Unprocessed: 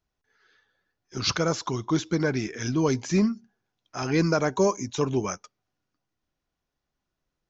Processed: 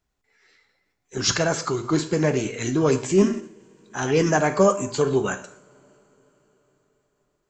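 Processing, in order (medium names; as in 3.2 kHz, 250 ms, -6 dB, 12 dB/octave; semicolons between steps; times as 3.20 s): two-slope reverb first 0.57 s, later 4.8 s, from -28 dB, DRR 8 dB; formant shift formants +3 st; trim +3.5 dB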